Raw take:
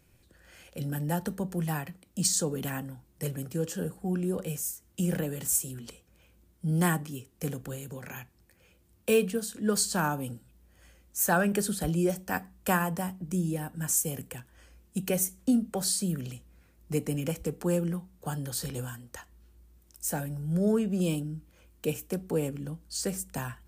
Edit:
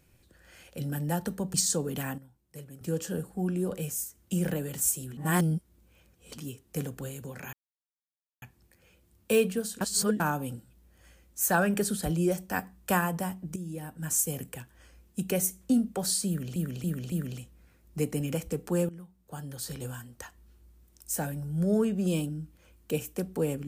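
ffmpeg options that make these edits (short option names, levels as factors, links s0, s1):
-filter_complex "[0:a]asplit=14[s0][s1][s2][s3][s4][s5][s6][s7][s8][s9][s10][s11][s12][s13];[s0]atrim=end=1.542[s14];[s1]atrim=start=2.208:end=2.852[s15];[s2]atrim=start=2.848:end=3.482,asetpts=PTS-STARTPTS,volume=0.266[s16];[s3]atrim=start=3.478:end=5.842[s17];[s4]atrim=start=5.838:end=7.052,asetpts=PTS-STARTPTS,areverse[s18];[s5]atrim=start=7.048:end=8.2,asetpts=PTS-STARTPTS,afade=t=out:st=1.148:d=0.004:c=hsin,apad=pad_dur=0.89[s19];[s6]atrim=start=8.2:end=9.592,asetpts=PTS-STARTPTS,afade=t=in:d=0.004:c=hsin[s20];[s7]atrim=start=9.588:end=9.982,asetpts=PTS-STARTPTS,areverse[s21];[s8]atrim=start=9.978:end=13.34,asetpts=PTS-STARTPTS,afade=t=out:st=3.358:d=0.004:c=hsin:silence=0.251189[s22];[s9]atrim=start=13.34:end=16.342,asetpts=PTS-STARTPTS,afade=t=in:d=0.63:silence=0.251189[s23];[s10]atrim=start=16.058:end=16.342[s24];[s11]atrim=start=16.058:end=16.342[s25];[s12]atrim=start=16.058:end=17.83,asetpts=PTS-STARTPTS,afade=t=out:st=1.768:d=0.004:c=hsin:silence=0.158489[s26];[s13]atrim=start=17.83,asetpts=PTS-STARTPTS,afade=t=in:d=1.28:silence=0.158489[s27];[s14][s15]acrossfade=d=0.004:c1=hsin:c2=hsin[s28];[s28][s16]acrossfade=d=0.004:c1=hsin:c2=hsin[s29];[s29][s17]acrossfade=d=0.004:c1=hsin:c2=hsin[s30];[s30][s18]acrossfade=d=0.004:c1=hsin:c2=hsin[s31];[s19][s20]concat=n=2:v=0:a=1[s32];[s31][s32]acrossfade=d=0.004:c1=hsin:c2=hsin[s33];[s33][s21]acrossfade=d=0.004:c1=hsin:c2=hsin[s34];[s22][s23]concat=n=2:v=0:a=1[s35];[s34][s35]acrossfade=d=0.004:c1=hsin:c2=hsin[s36];[s36][s24]acrossfade=d=0.004:c1=hsin:c2=hsin[s37];[s37][s25]acrossfade=d=0.004:c1=hsin:c2=hsin[s38];[s26][s27]concat=n=2:v=0:a=1[s39];[s38][s39]acrossfade=d=0.004:c1=hsin:c2=hsin"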